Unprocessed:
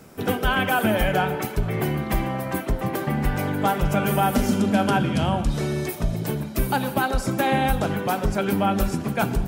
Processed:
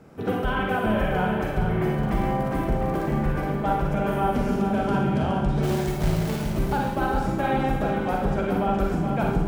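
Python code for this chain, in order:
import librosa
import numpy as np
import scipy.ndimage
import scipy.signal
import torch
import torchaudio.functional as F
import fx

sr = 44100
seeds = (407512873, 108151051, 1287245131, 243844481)

p1 = fx.high_shelf(x, sr, hz=2400.0, db=-11.5)
p2 = fx.rider(p1, sr, range_db=10, speed_s=0.5)
p3 = p1 + F.gain(torch.from_numpy(p2), -1.5).numpy()
p4 = fx.high_shelf(p3, sr, hz=9300.0, db=-8.5)
p5 = fx.dmg_crackle(p4, sr, seeds[0], per_s=73.0, level_db=-26.0, at=(1.91, 3.24), fade=0.02)
p6 = fx.quant_companded(p5, sr, bits=4, at=(5.62, 6.47), fade=0.02)
p7 = p6 + fx.echo_feedback(p6, sr, ms=418, feedback_pct=47, wet_db=-7, dry=0)
p8 = fx.rev_schroeder(p7, sr, rt60_s=0.6, comb_ms=38, drr_db=0.5)
y = F.gain(torch.from_numpy(p8), -9.0).numpy()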